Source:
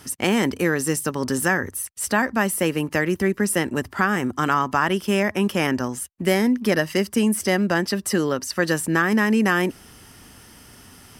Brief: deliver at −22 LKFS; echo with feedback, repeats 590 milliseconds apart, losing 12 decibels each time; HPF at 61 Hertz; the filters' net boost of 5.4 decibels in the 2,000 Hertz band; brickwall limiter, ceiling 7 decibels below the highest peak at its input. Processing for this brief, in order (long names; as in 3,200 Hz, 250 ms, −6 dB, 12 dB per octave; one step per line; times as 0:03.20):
high-pass filter 61 Hz
parametric band 2,000 Hz +6.5 dB
brickwall limiter −9.5 dBFS
repeating echo 590 ms, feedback 25%, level −12 dB
level −0.5 dB